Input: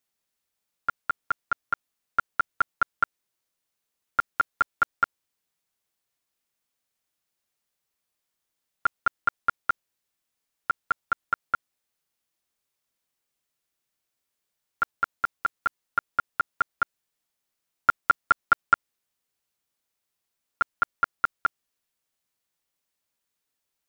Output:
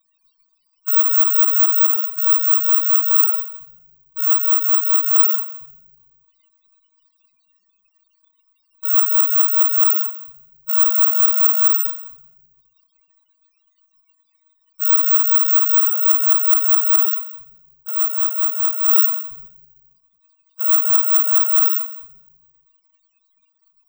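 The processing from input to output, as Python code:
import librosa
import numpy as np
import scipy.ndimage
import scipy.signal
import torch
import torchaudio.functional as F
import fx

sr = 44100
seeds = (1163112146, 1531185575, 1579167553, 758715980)

p1 = fx.block_float(x, sr, bits=5)
p2 = fx.peak_eq(p1, sr, hz=1100.0, db=14.5, octaves=0.21)
p3 = p2 + 0.94 * np.pad(p2, (int(5.4 * sr / 1000.0), 0))[:len(p2)]
p4 = p3 + fx.echo_single(p3, sr, ms=180, db=-19.5, dry=0)
p5 = fx.room_shoebox(p4, sr, seeds[0], volume_m3=410.0, walls='mixed', distance_m=1.7)
p6 = fx.level_steps(p5, sr, step_db=15)
p7 = p5 + F.gain(torch.from_numpy(p6), -3.0).numpy()
p8 = fx.fold_sine(p7, sr, drive_db=6, ceiling_db=3.5)
p9 = (np.kron(scipy.signal.resample_poly(p8, 1, 2), np.eye(2)[0]) * 2)[:len(p8)]
p10 = fx.spec_topn(p9, sr, count=16)
p11 = fx.over_compress(p10, sr, threshold_db=-15.0, ratio=-1.0)
p12 = fx.high_shelf_res(p11, sr, hz=2000.0, db=12.5, q=3.0)
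p13 = fx.end_taper(p12, sr, db_per_s=150.0)
y = F.gain(torch.from_numpy(p13), -10.0).numpy()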